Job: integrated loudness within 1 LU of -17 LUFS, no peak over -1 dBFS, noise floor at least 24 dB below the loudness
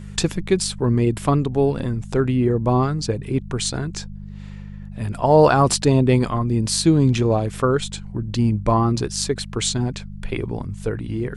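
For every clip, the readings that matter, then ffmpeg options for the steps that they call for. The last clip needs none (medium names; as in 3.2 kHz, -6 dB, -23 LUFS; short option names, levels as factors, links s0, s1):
hum 50 Hz; highest harmonic 200 Hz; hum level -32 dBFS; loudness -20.5 LUFS; peak level -2.5 dBFS; loudness target -17.0 LUFS
-> -af "bandreject=f=50:t=h:w=4,bandreject=f=100:t=h:w=4,bandreject=f=150:t=h:w=4,bandreject=f=200:t=h:w=4"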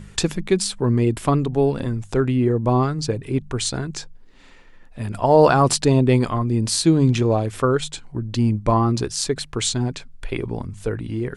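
hum not found; loudness -20.5 LUFS; peak level -2.5 dBFS; loudness target -17.0 LUFS
-> -af "volume=1.5,alimiter=limit=0.891:level=0:latency=1"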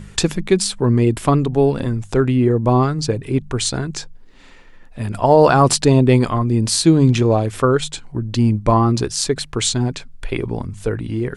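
loudness -17.0 LUFS; peak level -1.0 dBFS; noise floor -41 dBFS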